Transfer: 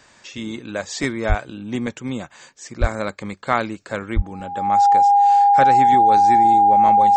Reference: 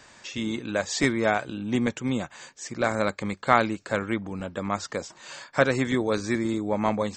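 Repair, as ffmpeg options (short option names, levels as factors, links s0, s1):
-filter_complex "[0:a]bandreject=f=810:w=30,asplit=3[s0][s1][s2];[s0]afade=t=out:st=1.28:d=0.02[s3];[s1]highpass=f=140:w=0.5412,highpass=f=140:w=1.3066,afade=t=in:st=1.28:d=0.02,afade=t=out:st=1.4:d=0.02[s4];[s2]afade=t=in:st=1.4:d=0.02[s5];[s3][s4][s5]amix=inputs=3:normalize=0,asplit=3[s6][s7][s8];[s6]afade=t=out:st=2.8:d=0.02[s9];[s7]highpass=f=140:w=0.5412,highpass=f=140:w=1.3066,afade=t=in:st=2.8:d=0.02,afade=t=out:st=2.92:d=0.02[s10];[s8]afade=t=in:st=2.92:d=0.02[s11];[s9][s10][s11]amix=inputs=3:normalize=0,asplit=3[s12][s13][s14];[s12]afade=t=out:st=4.15:d=0.02[s15];[s13]highpass=f=140:w=0.5412,highpass=f=140:w=1.3066,afade=t=in:st=4.15:d=0.02,afade=t=out:st=4.27:d=0.02[s16];[s14]afade=t=in:st=4.27:d=0.02[s17];[s15][s16][s17]amix=inputs=3:normalize=0"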